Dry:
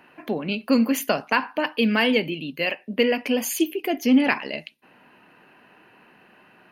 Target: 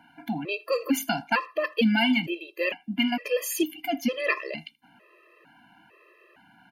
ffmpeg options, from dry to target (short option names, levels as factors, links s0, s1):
-filter_complex "[0:a]asplit=2[s0][s1];[s1]adelay=80,highpass=300,lowpass=3400,asoftclip=type=hard:threshold=0.178,volume=0.0562[s2];[s0][s2]amix=inputs=2:normalize=0,afftfilt=real='re*gt(sin(2*PI*1.1*pts/sr)*(1-2*mod(floor(b*sr/1024/340),2)),0)':imag='im*gt(sin(2*PI*1.1*pts/sr)*(1-2*mod(floor(b*sr/1024/340),2)),0)':win_size=1024:overlap=0.75"